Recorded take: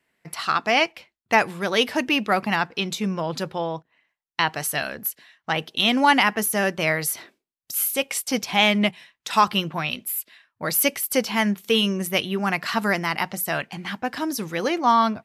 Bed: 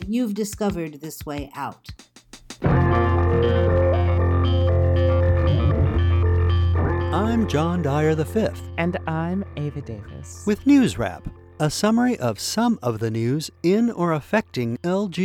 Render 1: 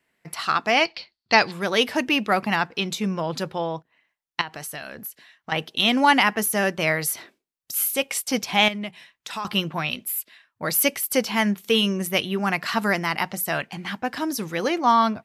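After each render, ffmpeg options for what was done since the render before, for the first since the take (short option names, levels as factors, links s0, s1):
-filter_complex "[0:a]asettb=1/sr,asplit=3[s0][s1][s2];[s0]atrim=end=0.854[s3];[s1]atrim=start=0.85:end=1.52,asetpts=PTS-STARTPTS,afade=t=in:d=0.004:c=qsin,afade=t=out:st=0.666:d=0.004:c=qsin,lowpass=f=4500:t=q:w=10[s4];[s2]atrim=start=1.516[s5];[s3][s4]acrossfade=d=0.004:c1=hsin:c2=qsin[s6];[s6][s5]acrossfade=d=0.004:c1=qsin:c2=hsin,asettb=1/sr,asplit=3[s7][s8][s9];[s7]atrim=end=4.414[s10];[s8]atrim=start=4.41:end=5.52,asetpts=PTS-STARTPTS,afade=t=in:d=0.004:c=qsin,afade=t=out:st=1.106:d=0.004:c=qsin,acompressor=threshold=0.0224:ratio=3:attack=3.2:release=140:knee=1:detection=peak[s11];[s9]atrim=start=5.516[s12];[s10][s11]acrossfade=d=0.004:c1=hsin:c2=qsin[s13];[s13][s12]acrossfade=d=0.004:c1=qsin:c2=hsin,asettb=1/sr,asplit=3[s14][s15][s16];[s14]atrim=end=8.684[s17];[s15]atrim=start=8.68:end=9.45,asetpts=PTS-STARTPTS,afade=t=in:d=0.004:c=qsin,afade=t=out:st=0.766:d=0.004:c=qsin,acompressor=threshold=0.0224:ratio=2.5:attack=3.2:release=140:knee=1:detection=peak[s18];[s16]atrim=start=9.446[s19];[s17][s18]acrossfade=d=0.004:c1=hsin:c2=qsin[s20];[s20][s19]acrossfade=d=0.004:c1=qsin:c2=hsin"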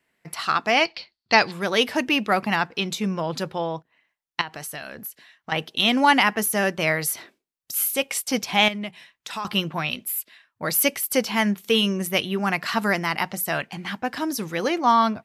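-af anull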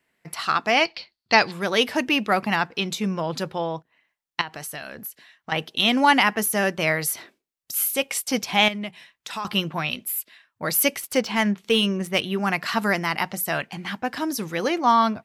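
-filter_complex "[0:a]asettb=1/sr,asplit=3[s0][s1][s2];[s0]atrim=end=11.004[s3];[s1]atrim=start=11:end=12.26,asetpts=PTS-STARTPTS,afade=t=in:d=0.004:c=qsin,afade=t=out:st=1.256:d=0.004:c=qsin,adynamicsmooth=sensitivity=3.5:basefreq=4700[s4];[s2]atrim=start=12.256[s5];[s3][s4]acrossfade=d=0.004:c1=hsin:c2=qsin[s6];[s6][s5]acrossfade=d=0.004:c1=qsin:c2=hsin"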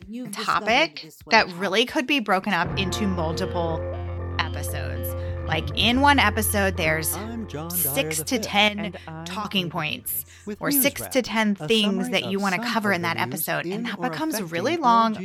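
-filter_complex "[1:a]volume=0.266[s0];[0:a][s0]amix=inputs=2:normalize=0"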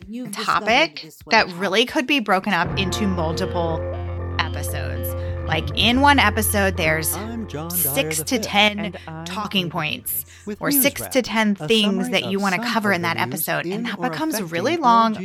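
-af "volume=1.41,alimiter=limit=0.794:level=0:latency=1"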